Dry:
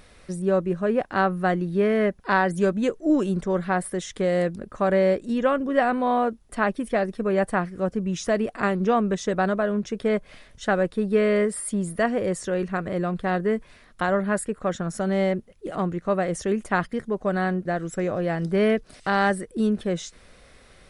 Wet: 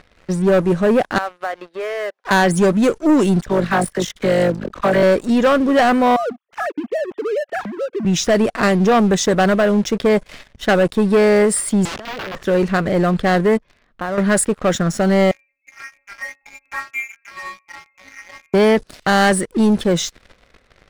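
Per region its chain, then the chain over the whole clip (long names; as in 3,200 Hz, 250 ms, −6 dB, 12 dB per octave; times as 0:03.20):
0:01.18–0:02.31: high-pass filter 550 Hz 24 dB per octave + spectral tilt −1.5 dB per octave + downward compressor 2.5 to 1, threshold −37 dBFS
0:03.42–0:05.03: amplitude modulation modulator 50 Hz, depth 55% + all-pass dispersion lows, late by 42 ms, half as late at 1,100 Hz
0:06.16–0:08.05: three sine waves on the formant tracks + notch filter 2,000 Hz, Q 21 + downward compressor 3 to 1, threshold −34 dBFS
0:11.85–0:12.43: compressor whose output falls as the input rises −35 dBFS + low-pass filter 1,300 Hz + wrap-around overflow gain 34 dB
0:13.57–0:14.18: Butterworth low-pass 6,300 Hz + high-shelf EQ 2,400 Hz −7 dB + downward compressor 1.5 to 1, threshold −51 dBFS
0:15.31–0:18.54: low-shelf EQ 330 Hz −5 dB + stiff-string resonator 240 Hz, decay 0.41 s, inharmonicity 0.002 + voice inversion scrambler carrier 2,600 Hz
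whole clip: low-pass that shuts in the quiet parts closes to 2,400 Hz, open at −18 dBFS; high-shelf EQ 3,400 Hz +7.5 dB; leveller curve on the samples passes 3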